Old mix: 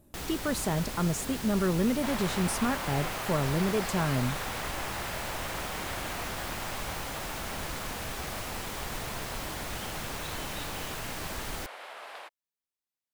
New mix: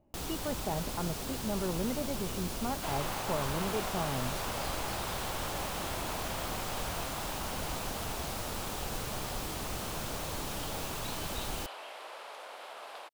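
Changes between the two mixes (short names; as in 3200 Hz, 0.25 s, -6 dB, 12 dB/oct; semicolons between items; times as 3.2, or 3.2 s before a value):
speech: add rippled Chebyshev low-pass 3000 Hz, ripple 9 dB; second sound: entry +0.80 s; master: add bell 1900 Hz -6.5 dB 0.82 oct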